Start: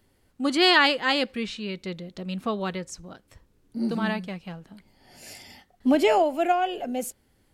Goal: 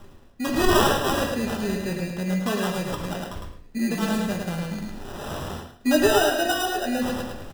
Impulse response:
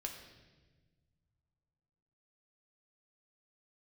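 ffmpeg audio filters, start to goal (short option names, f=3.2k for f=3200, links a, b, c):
-filter_complex "[0:a]asplit=2[a][b];[b]acompressor=threshold=-31dB:ratio=6,volume=0dB[c];[a][c]amix=inputs=2:normalize=0,acrusher=samples=20:mix=1:aa=0.000001,aecho=1:1:107|214|321:0.473|0.118|0.0296,areverse,acompressor=mode=upward:threshold=-20dB:ratio=2.5,areverse[d];[1:a]atrim=start_sample=2205,atrim=end_sample=6615[e];[d][e]afir=irnorm=-1:irlink=0"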